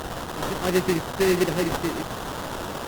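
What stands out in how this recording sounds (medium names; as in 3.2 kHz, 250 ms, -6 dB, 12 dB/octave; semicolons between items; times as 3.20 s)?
a quantiser's noise floor 6-bit, dither triangular; phasing stages 2, 1.5 Hz, lowest notch 640–1300 Hz; aliases and images of a low sample rate 2.3 kHz, jitter 20%; Opus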